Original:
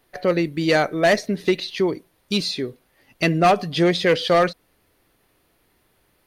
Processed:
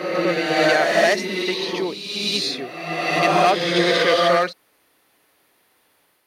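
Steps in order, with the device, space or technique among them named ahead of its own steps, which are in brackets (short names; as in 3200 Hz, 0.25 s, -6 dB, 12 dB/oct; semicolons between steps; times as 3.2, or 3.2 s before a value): ghost voice (reverse; reverb RT60 1.7 s, pre-delay 52 ms, DRR -3 dB; reverse; HPF 560 Hz 6 dB/oct)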